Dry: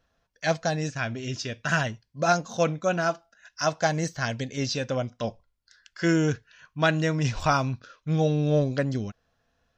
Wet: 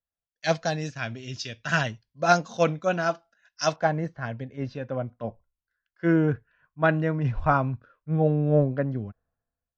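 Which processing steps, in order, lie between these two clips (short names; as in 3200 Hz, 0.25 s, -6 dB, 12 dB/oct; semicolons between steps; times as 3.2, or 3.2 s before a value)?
LPF 5200 Hz 12 dB/oct, from 3.76 s 1700 Hz; three-band expander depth 70%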